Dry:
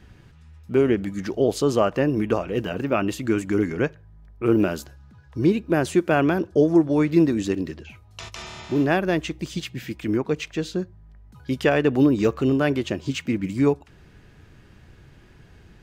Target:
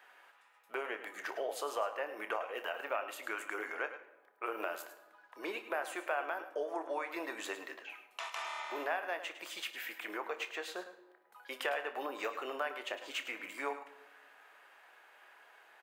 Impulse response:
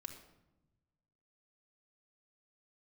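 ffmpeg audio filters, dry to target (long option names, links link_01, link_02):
-filter_complex "[0:a]highpass=frequency=690:width=0.5412,highpass=frequency=690:width=1.3066,equalizer=frequency=5400:width_type=o:width=1.6:gain=-14,acompressor=threshold=-39dB:ratio=3,aecho=1:1:28|59:0.266|0.126,asplit=2[link_01][link_02];[1:a]atrim=start_sample=2205,asetrate=38367,aresample=44100,adelay=105[link_03];[link_02][link_03]afir=irnorm=-1:irlink=0,volume=-7.5dB[link_04];[link_01][link_04]amix=inputs=2:normalize=0,volume=2.5dB"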